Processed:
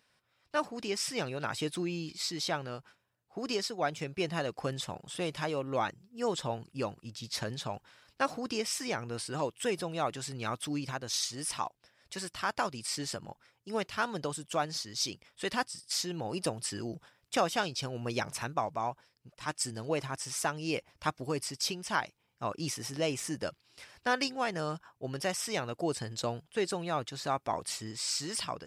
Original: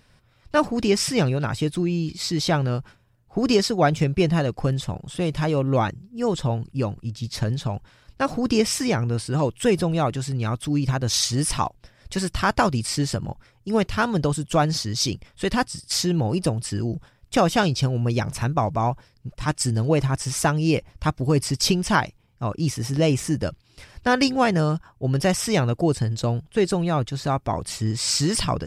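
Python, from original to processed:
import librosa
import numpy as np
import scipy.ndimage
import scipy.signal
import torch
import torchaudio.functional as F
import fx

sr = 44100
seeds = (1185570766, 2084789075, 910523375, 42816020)

y = fx.highpass(x, sr, hz=600.0, slope=6)
y = fx.rider(y, sr, range_db=4, speed_s=0.5)
y = y * 10.0 ** (-7.0 / 20.0)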